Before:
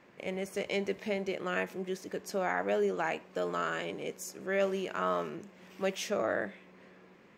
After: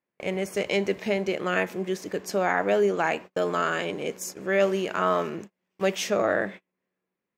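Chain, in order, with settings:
noise gate −45 dBFS, range −35 dB
level +7.5 dB

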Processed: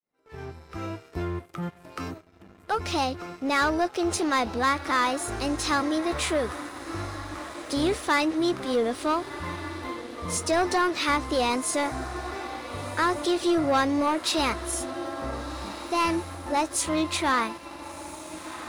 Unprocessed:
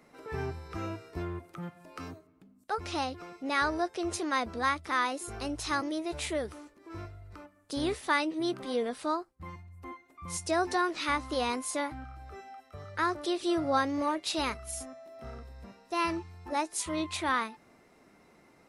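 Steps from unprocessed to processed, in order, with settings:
fade in at the beginning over 1.51 s
feedback delay with all-pass diffusion 1,446 ms, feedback 55%, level −14 dB
leveller curve on the samples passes 2

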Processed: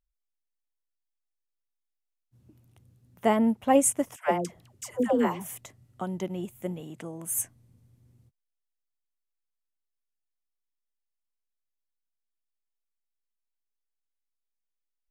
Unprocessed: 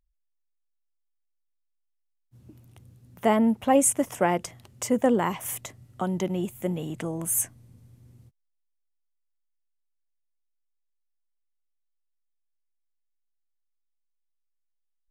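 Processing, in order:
0:04.16–0:05.50: all-pass dispersion lows, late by 112 ms, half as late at 650 Hz
0:06.80–0:07.38: high-pass filter 130 Hz
expander for the loud parts 1.5 to 1, over −31 dBFS

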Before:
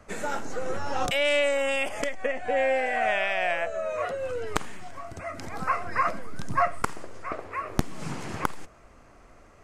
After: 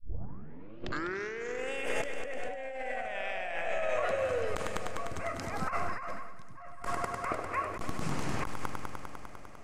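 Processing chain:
turntable start at the beginning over 1.73 s
echo machine with several playback heads 100 ms, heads first and second, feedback 73%, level −13 dB
compressor whose output falls as the input rises −27 dBFS, ratio −0.5
level −4.5 dB

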